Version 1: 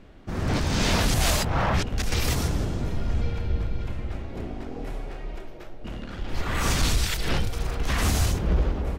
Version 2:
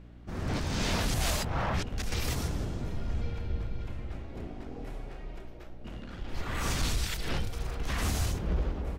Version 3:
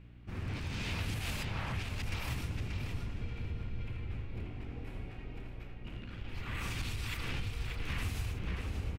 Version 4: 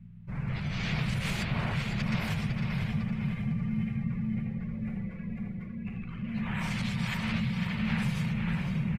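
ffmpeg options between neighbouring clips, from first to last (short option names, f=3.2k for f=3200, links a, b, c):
-af "aeval=exprs='val(0)+0.00794*(sin(2*PI*60*n/s)+sin(2*PI*2*60*n/s)/2+sin(2*PI*3*60*n/s)/3+sin(2*PI*4*60*n/s)/4+sin(2*PI*5*60*n/s)/5)':c=same,volume=-7dB"
-filter_complex "[0:a]equalizer=f=100:t=o:w=0.67:g=8,equalizer=f=630:t=o:w=0.67:g=-5,equalizer=f=2.5k:t=o:w=0.67:g=9,equalizer=f=6.3k:t=o:w=0.67:g=-4,acompressor=threshold=-28dB:ratio=6,asplit=2[a][b];[b]adelay=583,lowpass=f=4.5k:p=1,volume=-4dB,asplit=2[c][d];[d]adelay=583,lowpass=f=4.5k:p=1,volume=0.25,asplit=2[e][f];[f]adelay=583,lowpass=f=4.5k:p=1,volume=0.25[g];[a][c][e][g]amix=inputs=4:normalize=0,volume=-6dB"
-af "aecho=1:1:503|1006|1509|2012|2515|3018:0.473|0.232|0.114|0.0557|0.0273|0.0134,afreqshift=-230,afftdn=nr=14:nf=-53,volume=5dB"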